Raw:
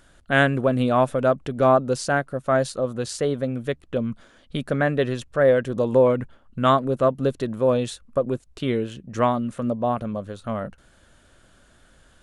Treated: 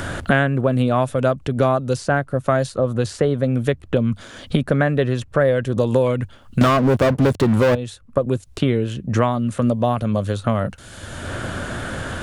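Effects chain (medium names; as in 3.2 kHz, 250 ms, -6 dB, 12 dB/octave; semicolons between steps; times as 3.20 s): 6.61–7.75 s: waveshaping leveller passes 5; peaking EQ 95 Hz +12 dB 0.77 oct; three bands compressed up and down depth 100%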